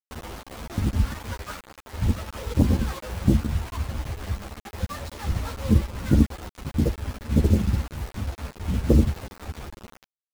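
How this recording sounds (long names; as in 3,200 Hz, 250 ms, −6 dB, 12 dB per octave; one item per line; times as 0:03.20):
chopped level 4.3 Hz, depth 65%, duty 85%
a quantiser's noise floor 6 bits, dither none
a shimmering, thickened sound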